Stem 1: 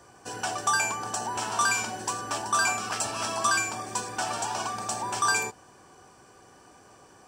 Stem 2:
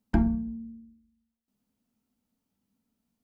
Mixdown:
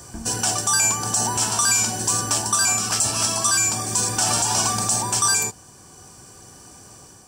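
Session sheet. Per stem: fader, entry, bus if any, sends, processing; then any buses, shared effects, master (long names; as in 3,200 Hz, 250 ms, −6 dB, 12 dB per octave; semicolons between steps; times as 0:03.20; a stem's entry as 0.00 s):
+1.5 dB, 0.00 s, no send, bass and treble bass +11 dB, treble +15 dB; automatic gain control gain up to 4 dB
−16.5 dB, 0.00 s, no send, no processing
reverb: not used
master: speech leveller within 4 dB 0.5 s; brickwall limiter −9 dBFS, peak gain reduction 9 dB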